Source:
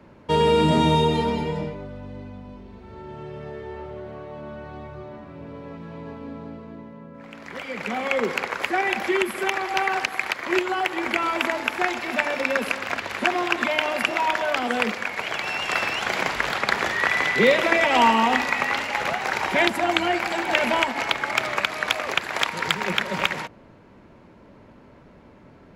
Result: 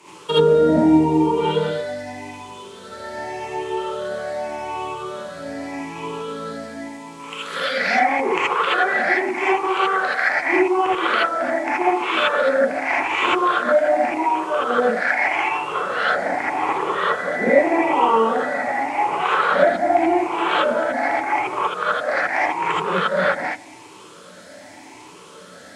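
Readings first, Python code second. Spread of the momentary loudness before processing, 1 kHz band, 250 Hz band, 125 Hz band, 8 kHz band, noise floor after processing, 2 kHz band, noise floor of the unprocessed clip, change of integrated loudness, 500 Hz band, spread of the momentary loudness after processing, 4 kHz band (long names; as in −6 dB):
20 LU, +5.0 dB, +5.0 dB, −2.0 dB, −4.0 dB, −42 dBFS, +2.0 dB, −50 dBFS, +3.0 dB, +6.0 dB, 14 LU, −2.0 dB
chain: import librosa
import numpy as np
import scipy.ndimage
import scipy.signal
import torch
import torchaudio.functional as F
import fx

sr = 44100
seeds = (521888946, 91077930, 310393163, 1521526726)

y = fx.spec_ripple(x, sr, per_octave=0.69, drift_hz=0.84, depth_db=15)
y = fx.weighting(y, sr, curve='A')
y = fx.env_lowpass_down(y, sr, base_hz=630.0, full_db=-18.0)
y = fx.high_shelf(y, sr, hz=5400.0, db=12.0)
y = fx.dmg_noise_band(y, sr, seeds[0], low_hz=1600.0, high_hz=9300.0, level_db=-60.0)
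y = fx.rev_gated(y, sr, seeds[1], gate_ms=100, shape='rising', drr_db=-8.0)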